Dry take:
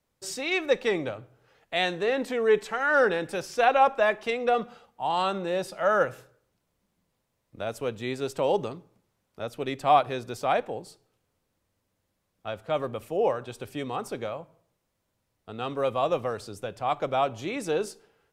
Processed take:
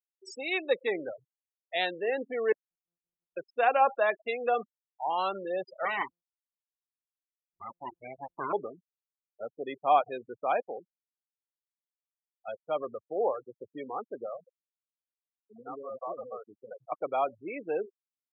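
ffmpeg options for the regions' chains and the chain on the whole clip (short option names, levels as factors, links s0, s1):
-filter_complex "[0:a]asettb=1/sr,asplit=3[s0][s1][s2];[s0]atrim=end=2.524[s3];[s1]atrim=start=2.52:end=3.37,asetpts=PTS-STARTPTS,afade=t=in:d=0.004:c=qsin,afade=t=out:st=0.846:d=0.004:c=qsin,asplit=3[s4][s5][s6];[s4]bandpass=f=300:t=q:w=8,volume=1[s7];[s5]bandpass=f=870:t=q:w=8,volume=0.501[s8];[s6]bandpass=f=2240:t=q:w=8,volume=0.355[s9];[s7][s8][s9]amix=inputs=3:normalize=0,acompressor=threshold=0.00398:ratio=5:attack=3.2:release=140:knee=1:detection=peak,aeval=exprs='abs(val(0))':c=same[s10];[s2]atrim=start=3.366[s11];[s3][s10]acrossfade=d=0.004:c1=hsin:c2=qsin[s12];[s12][s11]acrossfade=d=0.004:c1=qsin:c2=hsin,asettb=1/sr,asplit=3[s13][s14][s15];[s13]atrim=end=5.854[s16];[s14]atrim=start=5.85:end=8.53,asetpts=PTS-STARTPTS,afade=t=in:d=0.004:c=qsin,afade=t=out:st=2.676:d=0.004:c=qsin,aeval=exprs='abs(val(0))':c=same,acrusher=bits=9:mode=log:mix=0:aa=0.000001[s17];[s15]atrim=start=8.526[s18];[s16][s17]acrossfade=d=0.004:c1=hsin:c2=qsin[s19];[s19][s18]acrossfade=d=0.004:c1=qsin:c2=hsin,asettb=1/sr,asplit=3[s20][s21][s22];[s20]atrim=end=14.404[s23];[s21]atrim=start=14.4:end=16.92,asetpts=PTS-STARTPTS,afade=t=in:d=0.004:c=qsin,afade=t=out:st=2.516:d=0.004:c=qsin,highpass=88,acompressor=threshold=0.0447:ratio=6:attack=3.2:release=140:knee=1:detection=peak,acrossover=split=460|3100[s24][s25][s26];[s25]adelay=70[s27];[s26]adelay=250[s28];[s24][s27][s28]amix=inputs=3:normalize=0,atrim=end_sample=111132[s29];[s22]atrim=start=16.916[s30];[s23][s29]acrossfade=d=0.004:c1=hsin:c2=qsin[s31];[s31][s30]acrossfade=d=0.004:c1=qsin:c2=hsin,afftfilt=real='re*gte(hypot(re,im),0.0501)':imag='im*gte(hypot(re,im),0.0501)':win_size=1024:overlap=0.75,highpass=330,volume=0.708"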